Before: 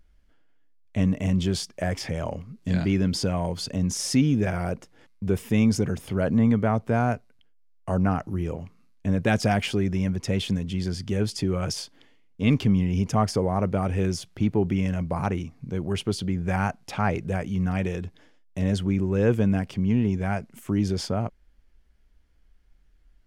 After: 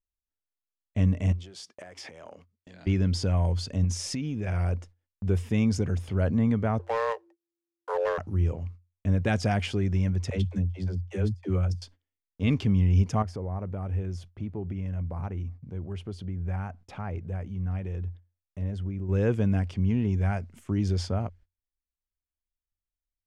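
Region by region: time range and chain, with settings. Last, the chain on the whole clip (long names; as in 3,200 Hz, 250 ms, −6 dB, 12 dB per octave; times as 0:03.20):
0:01.32–0:02.87: downward compressor 16 to 1, threshold −32 dBFS + high-pass filter 330 Hz + one half of a high-frequency compander encoder only
0:03.84–0:04.73: parametric band 2,500 Hz +4 dB 0.35 octaves + downward compressor 10 to 1, threshold −23 dBFS
0:06.79–0:08.18: running median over 15 samples + frequency shifter +340 Hz + hard clipping −16.5 dBFS
0:10.30–0:11.82: noise gate −27 dBFS, range −32 dB + all-pass dispersion lows, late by 75 ms, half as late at 300 Hz
0:13.22–0:19.09: parametric band 6,300 Hz −9 dB 2.8 octaves + downward compressor 1.5 to 1, threshold −40 dBFS
whole clip: noise gate −47 dBFS, range −30 dB; low-pass filter 8,800 Hz 12 dB per octave; parametric band 88 Hz +13.5 dB 0.26 octaves; level −4.5 dB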